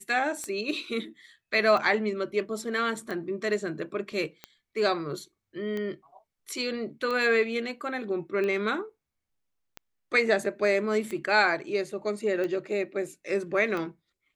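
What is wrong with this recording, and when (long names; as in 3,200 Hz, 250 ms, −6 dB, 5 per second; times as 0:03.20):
scratch tick 45 rpm −21 dBFS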